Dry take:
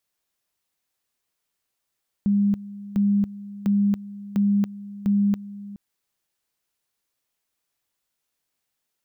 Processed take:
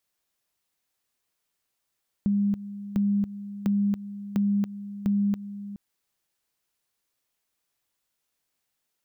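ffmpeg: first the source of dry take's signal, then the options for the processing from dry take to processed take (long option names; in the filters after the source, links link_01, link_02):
-f lavfi -i "aevalsrc='pow(10,(-16.5-17.5*gte(mod(t,0.7),0.28))/20)*sin(2*PI*202*t)':duration=3.5:sample_rate=44100"
-af "acompressor=threshold=-22dB:ratio=6"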